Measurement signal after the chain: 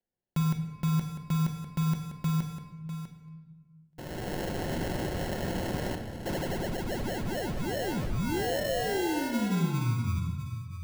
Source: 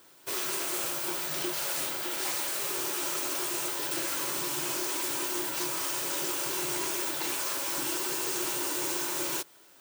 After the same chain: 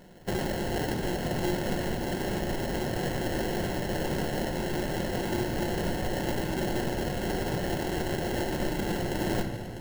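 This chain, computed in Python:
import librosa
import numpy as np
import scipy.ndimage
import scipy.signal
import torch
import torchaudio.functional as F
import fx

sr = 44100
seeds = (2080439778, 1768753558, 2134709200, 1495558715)

p1 = scipy.signal.sosfilt(scipy.signal.butter(4, 66.0, 'highpass', fs=sr, output='sos'), x)
p2 = fx.hum_notches(p1, sr, base_hz=50, count=5)
p3 = fx.rider(p2, sr, range_db=5, speed_s=0.5)
p4 = fx.sample_hold(p3, sr, seeds[0], rate_hz=1200.0, jitter_pct=0)
p5 = p4 + fx.echo_single(p4, sr, ms=649, db=-10.5, dry=0)
y = fx.room_shoebox(p5, sr, seeds[1], volume_m3=1300.0, walls='mixed', distance_m=0.94)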